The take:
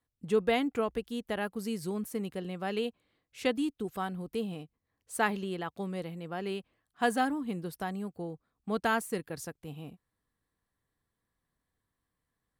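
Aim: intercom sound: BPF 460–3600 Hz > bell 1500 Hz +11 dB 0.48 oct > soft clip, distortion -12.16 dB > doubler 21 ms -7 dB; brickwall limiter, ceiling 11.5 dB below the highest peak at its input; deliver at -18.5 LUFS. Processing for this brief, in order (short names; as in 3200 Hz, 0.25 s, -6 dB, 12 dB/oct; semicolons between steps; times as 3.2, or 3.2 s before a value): limiter -26 dBFS; BPF 460–3600 Hz; bell 1500 Hz +11 dB 0.48 oct; soft clip -29 dBFS; doubler 21 ms -7 dB; gain +22 dB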